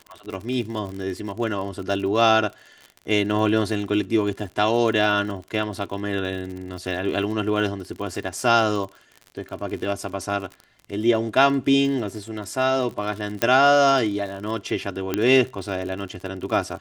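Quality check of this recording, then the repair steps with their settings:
surface crackle 51 per second −31 dBFS
0:13.42: click −5 dBFS
0:15.14: click −8 dBFS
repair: click removal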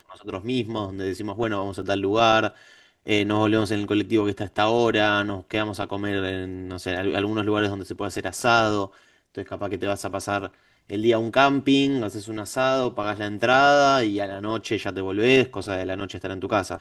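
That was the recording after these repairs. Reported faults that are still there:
0:13.42: click

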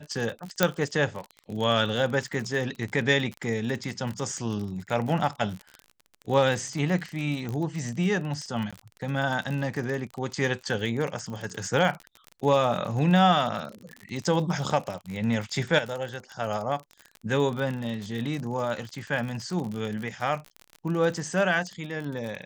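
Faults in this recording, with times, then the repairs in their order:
surface crackle 38 per second −31 dBFS
0:00.63: click −4 dBFS
0:07.49: click −21 dBFS
0:08.71–0:08.73: drop-out 16 ms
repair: click removal
repair the gap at 0:08.71, 16 ms

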